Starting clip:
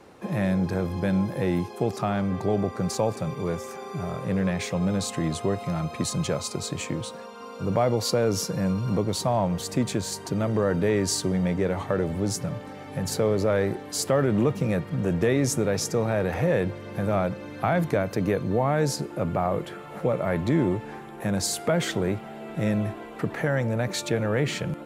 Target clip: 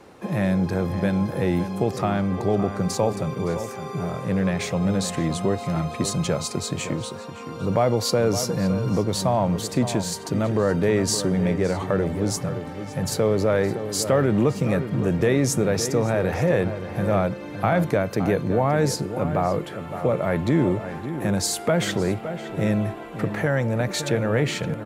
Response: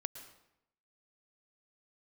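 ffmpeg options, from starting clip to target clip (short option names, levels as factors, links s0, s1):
-filter_complex "[0:a]asplit=2[s0][s1];[s1]adelay=565.6,volume=0.316,highshelf=f=4000:g=-12.7[s2];[s0][s2]amix=inputs=2:normalize=0,volume=1.33"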